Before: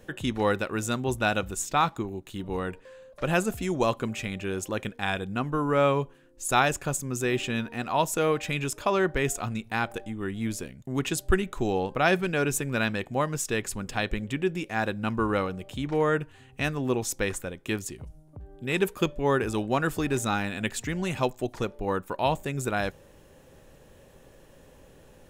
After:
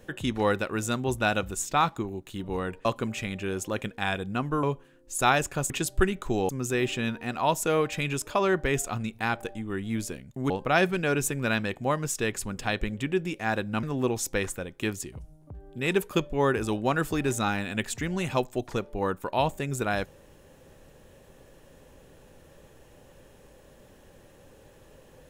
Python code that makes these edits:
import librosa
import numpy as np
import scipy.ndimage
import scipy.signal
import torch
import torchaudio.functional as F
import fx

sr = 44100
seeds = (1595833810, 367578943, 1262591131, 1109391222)

y = fx.edit(x, sr, fx.cut(start_s=2.85, length_s=1.01),
    fx.cut(start_s=5.64, length_s=0.29),
    fx.move(start_s=11.01, length_s=0.79, to_s=7.0),
    fx.cut(start_s=15.13, length_s=1.56), tone=tone)